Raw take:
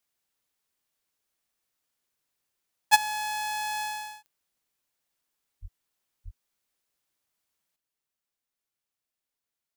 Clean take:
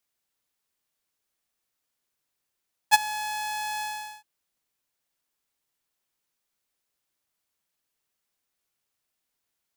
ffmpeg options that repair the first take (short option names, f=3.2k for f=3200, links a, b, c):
-filter_complex "[0:a]adeclick=t=4,asplit=3[a][b][c];[a]afade=t=out:st=5.61:d=0.02[d];[b]highpass=f=140:w=0.5412,highpass=f=140:w=1.3066,afade=t=in:st=5.61:d=0.02,afade=t=out:st=5.73:d=0.02[e];[c]afade=t=in:st=5.73:d=0.02[f];[d][e][f]amix=inputs=3:normalize=0,asplit=3[g][h][i];[g]afade=t=out:st=6.24:d=0.02[j];[h]highpass=f=140:w=0.5412,highpass=f=140:w=1.3066,afade=t=in:st=6.24:d=0.02,afade=t=out:st=6.36:d=0.02[k];[i]afade=t=in:st=6.36:d=0.02[l];[j][k][l]amix=inputs=3:normalize=0,asetnsamples=n=441:p=0,asendcmd='7.76 volume volume 7.5dB',volume=0dB"